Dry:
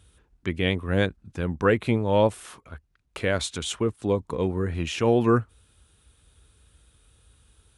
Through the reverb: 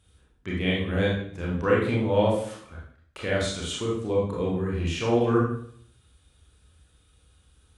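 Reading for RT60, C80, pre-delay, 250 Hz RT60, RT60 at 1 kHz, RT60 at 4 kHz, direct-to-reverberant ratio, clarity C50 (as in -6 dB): 0.60 s, 6.5 dB, 25 ms, 0.65 s, 0.55 s, 0.55 s, -4.5 dB, 2.0 dB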